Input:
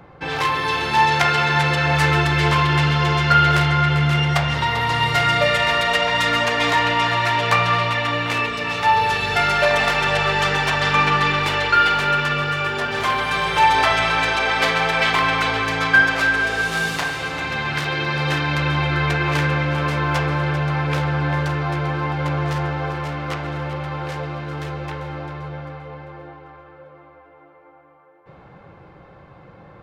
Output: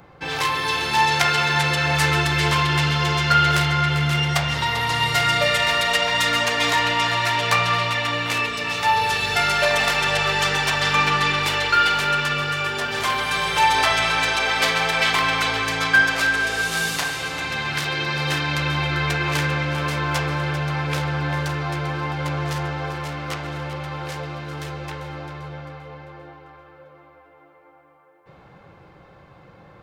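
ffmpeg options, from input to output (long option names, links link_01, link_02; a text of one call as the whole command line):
ffmpeg -i in.wav -af "highshelf=frequency=4000:gain=11.5,volume=-3.5dB" out.wav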